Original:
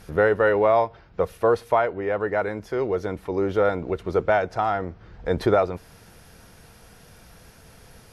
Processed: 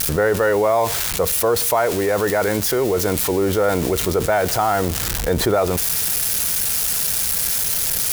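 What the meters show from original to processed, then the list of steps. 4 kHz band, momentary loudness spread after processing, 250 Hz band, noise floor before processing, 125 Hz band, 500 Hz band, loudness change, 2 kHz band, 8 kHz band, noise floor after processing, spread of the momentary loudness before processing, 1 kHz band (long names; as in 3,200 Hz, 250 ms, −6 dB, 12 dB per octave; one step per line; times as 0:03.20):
+19.0 dB, 2 LU, +6.0 dB, −51 dBFS, +7.0 dB, +3.0 dB, +5.0 dB, +4.0 dB, can't be measured, −23 dBFS, 9 LU, +3.0 dB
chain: spike at every zero crossing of −24 dBFS
envelope flattener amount 70%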